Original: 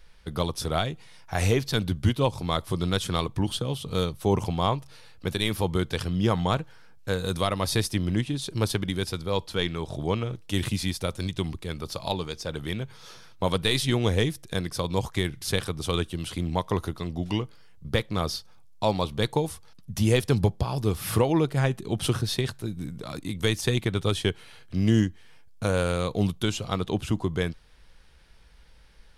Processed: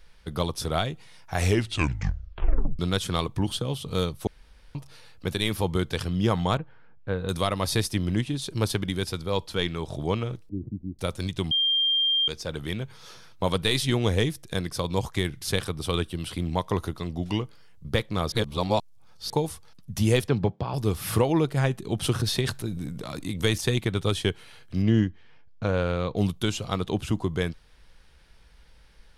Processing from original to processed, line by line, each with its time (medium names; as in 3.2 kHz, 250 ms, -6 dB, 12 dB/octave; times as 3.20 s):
1.40 s: tape stop 1.39 s
4.27–4.75 s: room tone
6.57–7.29 s: distance through air 470 m
10.49–10.99 s: four-pole ladder low-pass 370 Hz, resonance 40%
11.51–12.28 s: bleep 3.19 kHz -20 dBFS
15.71–16.45 s: peaking EQ 6.6 kHz -7.5 dB 0.22 oct
18.32–19.30 s: reverse
20.28–20.74 s: band-pass 120–3000 Hz
22.19–23.58 s: transient shaper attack +1 dB, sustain +7 dB
24.82–26.17 s: distance through air 180 m